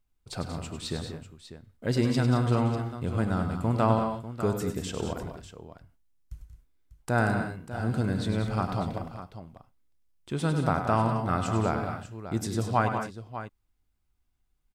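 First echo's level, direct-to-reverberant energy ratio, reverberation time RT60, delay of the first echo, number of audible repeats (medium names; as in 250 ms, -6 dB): -8.0 dB, no reverb, no reverb, 99 ms, 4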